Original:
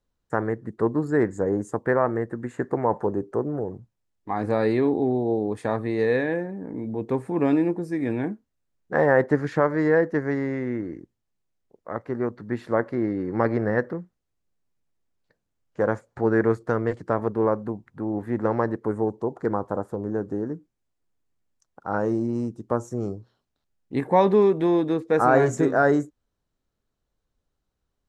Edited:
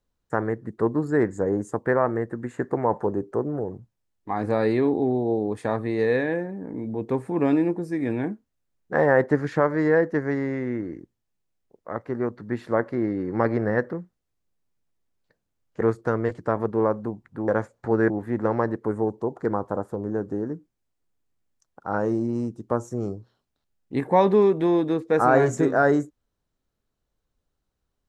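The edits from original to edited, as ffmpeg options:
ffmpeg -i in.wav -filter_complex "[0:a]asplit=4[link_01][link_02][link_03][link_04];[link_01]atrim=end=15.812[link_05];[link_02]atrim=start=16.428:end=18.102[link_06];[link_03]atrim=start=15.808:end=16.432[link_07];[link_04]atrim=start=18.098[link_08];[link_05][link_06]acrossfade=duration=0.004:curve1=hsin:curve2=hsin[link_09];[link_09][link_07]acrossfade=duration=0.004:curve1=hsin:curve2=hsin[link_10];[link_10][link_08]acrossfade=duration=0.004:curve1=hsin:curve2=hsin" out.wav

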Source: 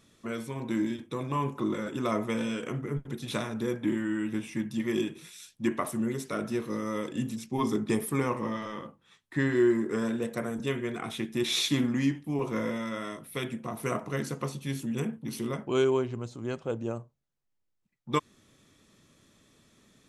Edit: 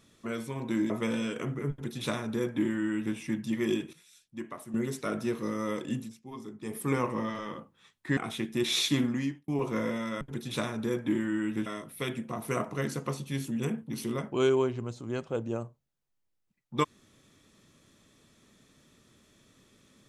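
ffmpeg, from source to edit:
ffmpeg -i in.wav -filter_complex "[0:a]asplit=10[link_01][link_02][link_03][link_04][link_05][link_06][link_07][link_08][link_09][link_10];[link_01]atrim=end=0.902[link_11];[link_02]atrim=start=2.168:end=5.202[link_12];[link_03]atrim=start=5.198:end=6.012,asetpts=PTS-STARTPTS,volume=-11dB[link_13];[link_04]atrim=start=6.008:end=7.44,asetpts=PTS-STARTPTS,afade=type=out:start_time=1.142:duration=0.29:silence=0.188365[link_14];[link_05]atrim=start=7.44:end=7.9,asetpts=PTS-STARTPTS,volume=-14.5dB[link_15];[link_06]atrim=start=7.9:end=9.442,asetpts=PTS-STARTPTS,afade=type=in:duration=0.29:silence=0.188365[link_16];[link_07]atrim=start=10.968:end=12.28,asetpts=PTS-STARTPTS,afade=type=out:start_time=0.712:duration=0.6:curve=qsin[link_17];[link_08]atrim=start=12.28:end=13.012,asetpts=PTS-STARTPTS,afade=type=in:duration=0.004:curve=hsin[link_18];[link_09]atrim=start=2.978:end=4.432[link_19];[link_10]atrim=start=13.008[link_20];[link_11][link_12]acrossfade=duration=0.004:curve1=hsin:curve2=hsin[link_21];[link_21][link_13]acrossfade=duration=0.004:curve1=hsin:curve2=hsin[link_22];[link_14][link_15][link_16]concat=n=3:v=0:a=1[link_23];[link_22][link_23]acrossfade=duration=0.004:curve1=hsin:curve2=hsin[link_24];[link_17][link_18]concat=n=2:v=0:a=1[link_25];[link_24][link_25]acrossfade=duration=0.004:curve1=hsin:curve2=hsin[link_26];[link_26][link_19]acrossfade=duration=0.004:curve1=hsin:curve2=hsin[link_27];[link_27][link_20]acrossfade=duration=0.004:curve1=hsin:curve2=hsin" out.wav

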